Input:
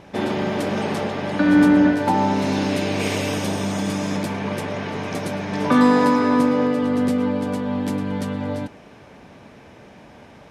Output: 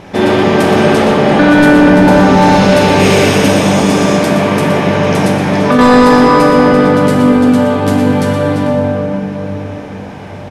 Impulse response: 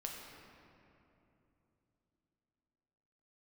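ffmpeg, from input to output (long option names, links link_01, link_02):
-filter_complex "[0:a]aecho=1:1:120:0.335[link_01];[1:a]atrim=start_sample=2205,asetrate=26901,aresample=44100[link_02];[link_01][link_02]afir=irnorm=-1:irlink=0,asettb=1/sr,asplit=3[link_03][link_04][link_05];[link_03]atrim=end=5.274[link_06];[link_04]atrim=start=5.27:end=5.79,asetpts=PTS-STARTPTS,afade=type=in:duration=0.004:curve=qsin,afade=type=out:start_time=0.516:duration=0.004:curve=qsin,acompressor=threshold=-20dB:ratio=3[link_07];[link_05]atrim=start=5.786[link_08];[link_06][link_07]acrossfade=duration=0.004:curve1=hsin:curve2=qsin[link_09];[link_09][link_08]acrossfade=duration=0.004:curve1=qsin:curve2=hsin,apsyclip=14dB,volume=-1.5dB"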